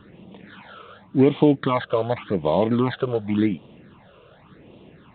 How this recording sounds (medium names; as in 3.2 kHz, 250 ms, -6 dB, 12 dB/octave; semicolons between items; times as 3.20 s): a buzz of ramps at a fixed pitch in blocks of 8 samples; phasing stages 8, 0.89 Hz, lowest notch 240–1600 Hz; A-law